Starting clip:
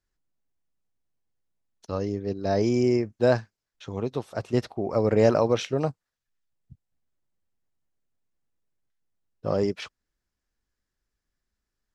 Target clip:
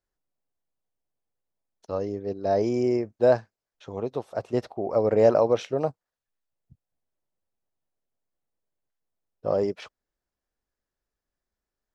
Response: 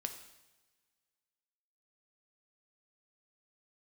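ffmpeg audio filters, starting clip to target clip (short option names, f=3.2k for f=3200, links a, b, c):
-af "equalizer=f=620:w=0.78:g=9.5,volume=-6.5dB"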